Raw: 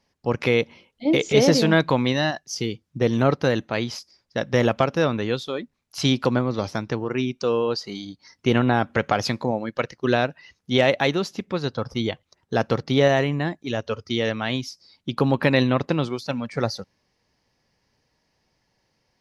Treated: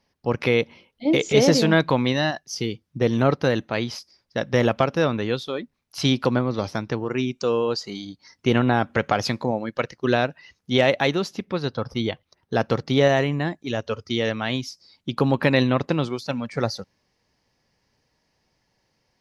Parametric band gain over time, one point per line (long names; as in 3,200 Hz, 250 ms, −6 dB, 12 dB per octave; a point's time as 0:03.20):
parametric band 7,200 Hz 0.29 octaves
−8 dB
from 0:01.04 +2.5 dB
from 0:01.65 −5 dB
from 0:07.04 +6.5 dB
from 0:07.90 −1 dB
from 0:11.38 −10.5 dB
from 0:12.69 +1 dB